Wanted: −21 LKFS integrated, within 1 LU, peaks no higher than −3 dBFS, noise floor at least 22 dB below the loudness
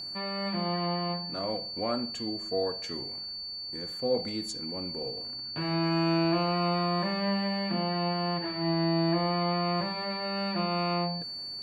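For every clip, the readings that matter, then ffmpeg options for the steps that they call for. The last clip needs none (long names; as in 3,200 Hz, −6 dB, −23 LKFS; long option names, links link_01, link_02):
interfering tone 4,500 Hz; level of the tone −36 dBFS; integrated loudness −30.0 LKFS; sample peak −16.0 dBFS; target loudness −21.0 LKFS
→ -af "bandreject=frequency=4500:width=30"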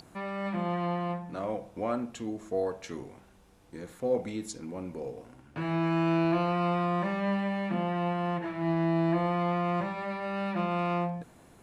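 interfering tone none found; integrated loudness −31.0 LKFS; sample peak −16.0 dBFS; target loudness −21.0 LKFS
→ -af "volume=10dB"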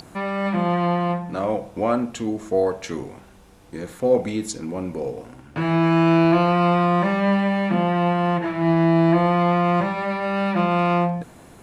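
integrated loudness −21.0 LKFS; sample peak −6.0 dBFS; background noise floor −47 dBFS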